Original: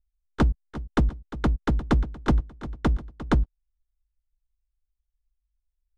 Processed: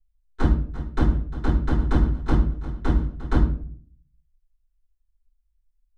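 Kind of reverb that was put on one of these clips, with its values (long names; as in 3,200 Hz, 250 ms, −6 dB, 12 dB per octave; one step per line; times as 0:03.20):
rectangular room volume 51 cubic metres, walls mixed, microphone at 3 metres
level −15 dB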